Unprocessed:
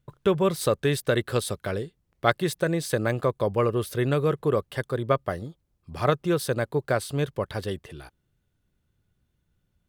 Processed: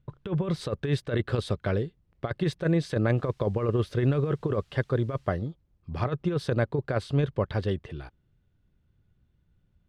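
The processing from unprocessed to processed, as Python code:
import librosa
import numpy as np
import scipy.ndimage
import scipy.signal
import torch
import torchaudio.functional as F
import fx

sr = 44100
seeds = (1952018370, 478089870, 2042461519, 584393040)

y = fx.over_compress(x, sr, threshold_db=-24.0, ratio=-0.5)
y = fx.dmg_noise_colour(y, sr, seeds[0], colour='blue', level_db=-54.0, at=(3.16, 5.3), fade=0.02)
y = scipy.signal.sosfilt(scipy.signal.butter(2, 4000.0, 'lowpass', fs=sr, output='sos'), y)
y = fx.low_shelf(y, sr, hz=270.0, db=7.0)
y = y * librosa.db_to_amplitude(-3.0)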